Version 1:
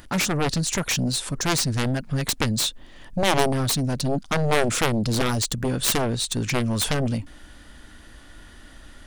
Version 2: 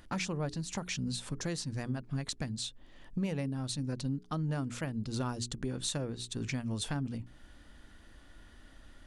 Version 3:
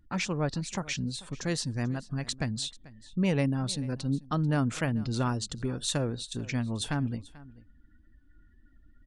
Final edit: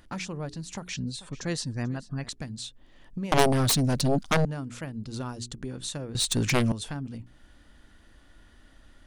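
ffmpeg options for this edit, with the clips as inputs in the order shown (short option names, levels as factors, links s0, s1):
-filter_complex "[0:a]asplit=2[s0][s1];[1:a]asplit=4[s2][s3][s4][s5];[s2]atrim=end=0.932[s6];[2:a]atrim=start=0.928:end=2.292[s7];[s3]atrim=start=2.288:end=3.322[s8];[s0]atrim=start=3.318:end=4.452[s9];[s4]atrim=start=4.448:end=6.152[s10];[s1]atrim=start=6.148:end=6.722[s11];[s5]atrim=start=6.718[s12];[s6][s7]acrossfade=d=0.004:c1=hsin:c2=hsin[s13];[s13][s8]acrossfade=d=0.004:c1=hsin:c2=hsin[s14];[s14][s9]acrossfade=d=0.004:c1=hsin:c2=hsin[s15];[s15][s10]acrossfade=d=0.004:c1=hsin:c2=hsin[s16];[s16][s11]acrossfade=d=0.004:c1=hsin:c2=hsin[s17];[s17][s12]acrossfade=d=0.004:c1=hsin:c2=hsin"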